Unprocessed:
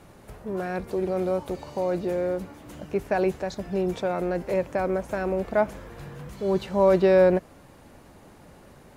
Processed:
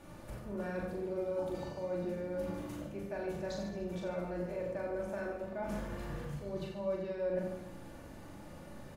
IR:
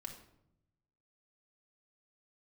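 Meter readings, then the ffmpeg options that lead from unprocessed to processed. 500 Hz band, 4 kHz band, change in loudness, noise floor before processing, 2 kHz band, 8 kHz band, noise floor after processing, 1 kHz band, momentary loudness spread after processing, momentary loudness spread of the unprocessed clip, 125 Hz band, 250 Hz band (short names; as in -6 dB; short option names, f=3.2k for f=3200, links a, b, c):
-13.5 dB, -10.0 dB, -13.5 dB, -51 dBFS, -12.0 dB, n/a, -50 dBFS, -15.0 dB, 14 LU, 15 LU, -9.0 dB, -11.5 dB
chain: -filter_complex "[0:a]areverse,acompressor=threshold=-34dB:ratio=10,areverse,aecho=1:1:40|88|145.6|214.7|297.7:0.631|0.398|0.251|0.158|0.1[a];[1:a]atrim=start_sample=2205[b];[a][b]afir=irnorm=-1:irlink=0"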